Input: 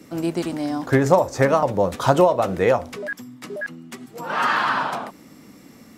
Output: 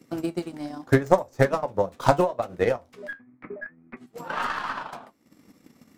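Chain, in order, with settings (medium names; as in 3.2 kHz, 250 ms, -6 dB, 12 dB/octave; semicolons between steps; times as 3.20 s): tracing distortion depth 0.06 ms; 3.13–3.97 s: Chebyshev low-pass 2.5 kHz, order 8; transient shaper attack +12 dB, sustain -10 dB; flange 0.79 Hz, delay 7.5 ms, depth 5.2 ms, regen -65%; trim -6.5 dB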